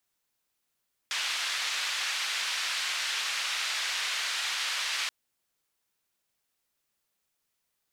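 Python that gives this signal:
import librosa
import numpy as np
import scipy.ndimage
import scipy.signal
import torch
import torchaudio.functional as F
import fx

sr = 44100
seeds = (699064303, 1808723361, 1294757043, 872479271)

y = fx.band_noise(sr, seeds[0], length_s=3.98, low_hz=1500.0, high_hz=4000.0, level_db=-31.5)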